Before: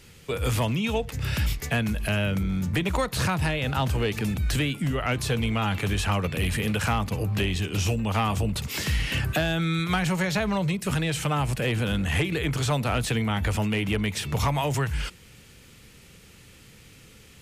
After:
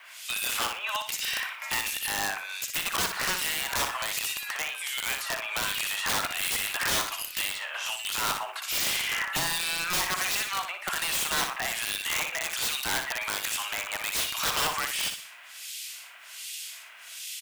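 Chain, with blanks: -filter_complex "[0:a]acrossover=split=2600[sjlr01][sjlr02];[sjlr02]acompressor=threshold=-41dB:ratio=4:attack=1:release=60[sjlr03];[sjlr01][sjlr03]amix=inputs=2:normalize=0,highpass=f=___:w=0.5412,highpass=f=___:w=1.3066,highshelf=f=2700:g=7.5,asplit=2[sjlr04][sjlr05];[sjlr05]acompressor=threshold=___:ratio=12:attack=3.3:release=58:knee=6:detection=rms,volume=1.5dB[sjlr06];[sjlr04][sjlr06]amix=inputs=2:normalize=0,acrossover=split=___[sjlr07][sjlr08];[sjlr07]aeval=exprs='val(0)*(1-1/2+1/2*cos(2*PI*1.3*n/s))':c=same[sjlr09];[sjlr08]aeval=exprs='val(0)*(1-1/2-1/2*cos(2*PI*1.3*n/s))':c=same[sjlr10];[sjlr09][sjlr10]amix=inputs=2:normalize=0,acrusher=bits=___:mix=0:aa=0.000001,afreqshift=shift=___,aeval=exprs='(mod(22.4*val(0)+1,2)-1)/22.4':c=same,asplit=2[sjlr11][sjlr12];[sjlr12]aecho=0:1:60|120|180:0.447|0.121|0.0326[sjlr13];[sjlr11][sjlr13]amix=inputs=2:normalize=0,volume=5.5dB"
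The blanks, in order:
750, 750, -41dB, 2000, 10, 180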